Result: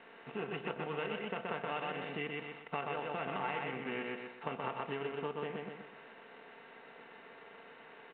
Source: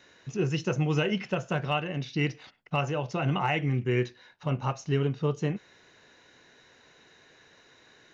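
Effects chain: per-bin compression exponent 0.6; air absorption 140 m; comb 4.4 ms, depth 54%; power-law curve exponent 1.4; on a send: feedback echo 0.125 s, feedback 32%, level -4 dB; on the sum: compressor 5:1, threshold -31 dBFS, peak gain reduction 10 dB; HPF 770 Hz 6 dB/oct; high shelf 2400 Hz -8.5 dB; gain +3 dB; µ-law 64 kbps 8000 Hz

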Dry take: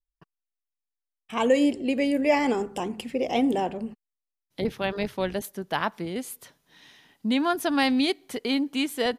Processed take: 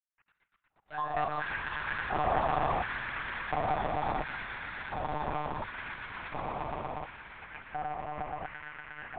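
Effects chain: median filter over 41 samples; reverse; compressor 5:1, threshold -33 dBFS, peak gain reduction 14 dB; reverse; grains; mistuned SSB -55 Hz 160–2800 Hz; on a send at -12.5 dB: reverb RT60 0.45 s, pre-delay 68 ms; on the sum: echoes that change speed 0.165 s, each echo +7 st, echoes 3; swelling echo 0.117 s, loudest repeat 5, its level -6 dB; LFO high-pass square 0.71 Hz 790–1600 Hz; monotone LPC vocoder at 8 kHz 150 Hz

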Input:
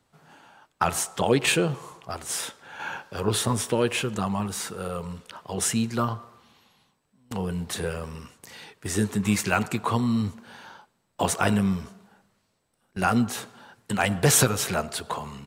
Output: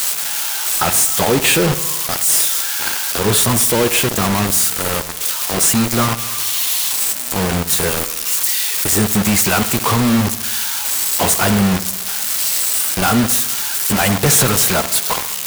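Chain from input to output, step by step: switching spikes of -15 dBFS; in parallel at -0.5 dB: limiter -18 dBFS, peak gain reduction 11.5 dB; on the sum: bit-crush 4-bit; hard clip -14.5 dBFS, distortion -13 dB; on a send: darkening echo 69 ms, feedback 64%, level -15 dB; on the sum: gain +5 dB

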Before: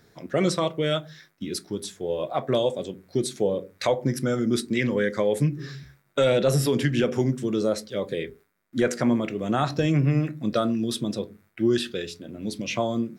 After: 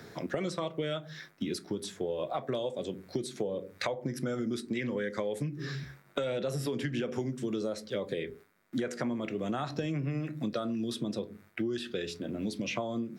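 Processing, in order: low shelf 62 Hz -11 dB; compressor 6:1, threshold -32 dBFS, peak gain reduction 14 dB; high shelf 6300 Hz -5.5 dB; three-band squash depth 40%; gain +1.5 dB

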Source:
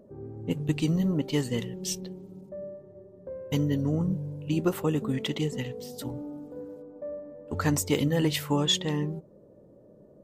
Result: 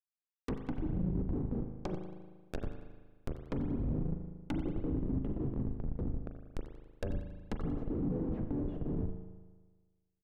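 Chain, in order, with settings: harmoniser -3 st -2 dB; Bessel high-pass 280 Hz, order 4; in parallel at +1.5 dB: compressor 10:1, threshold -37 dBFS, peak gain reduction 18.5 dB; on the sum: Schmitt trigger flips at -25.5 dBFS; treble ducked by the level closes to 360 Hz, closed at -28.5 dBFS; on a send: feedback echo 92 ms, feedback 44%, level -15.5 dB; on the sum: spring tank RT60 1.4 s, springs 38 ms, chirp 70 ms, DRR 5.5 dB; gain -3 dB

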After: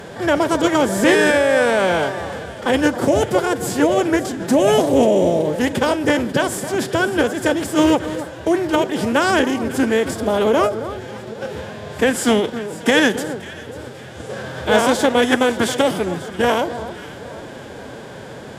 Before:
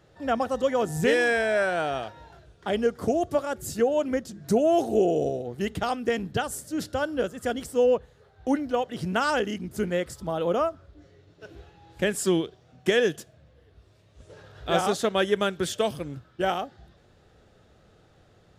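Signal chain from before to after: per-bin compression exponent 0.6; echo with dull and thin repeats by turns 0.271 s, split 1300 Hz, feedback 61%, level -11.5 dB; formant-preserving pitch shift +4 st; gain +5 dB

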